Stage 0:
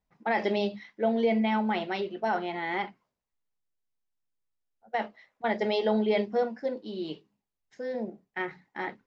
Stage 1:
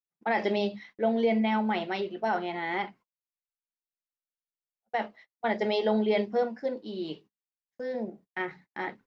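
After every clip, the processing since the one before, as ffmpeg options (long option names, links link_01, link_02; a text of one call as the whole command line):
ffmpeg -i in.wav -af "agate=range=-33dB:threshold=-52dB:ratio=16:detection=peak" out.wav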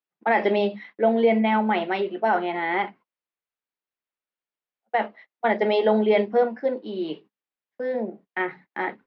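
ffmpeg -i in.wav -filter_complex "[0:a]acrossover=split=190 3500:gain=0.224 1 0.0794[link_01][link_02][link_03];[link_01][link_02][link_03]amix=inputs=3:normalize=0,volume=7dB" out.wav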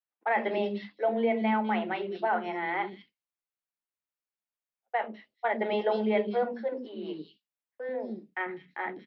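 ffmpeg -i in.wav -filter_complex "[0:a]acrossover=split=390|3900[link_01][link_02][link_03];[link_01]adelay=90[link_04];[link_03]adelay=200[link_05];[link_04][link_02][link_05]amix=inputs=3:normalize=0,volume=-5.5dB" out.wav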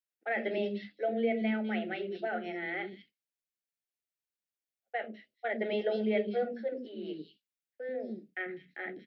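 ffmpeg -i in.wav -af "asuperstop=centerf=1000:order=4:qfactor=1.3,volume=-2.5dB" out.wav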